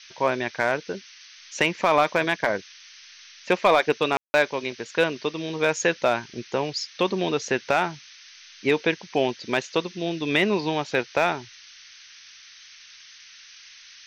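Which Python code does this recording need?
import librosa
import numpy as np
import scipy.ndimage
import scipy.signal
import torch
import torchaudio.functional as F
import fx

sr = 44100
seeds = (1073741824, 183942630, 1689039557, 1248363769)

y = fx.fix_declip(x, sr, threshold_db=-9.5)
y = fx.fix_ambience(y, sr, seeds[0], print_start_s=12.39, print_end_s=12.89, start_s=4.17, end_s=4.34)
y = fx.noise_reduce(y, sr, print_start_s=12.39, print_end_s=12.89, reduce_db=21.0)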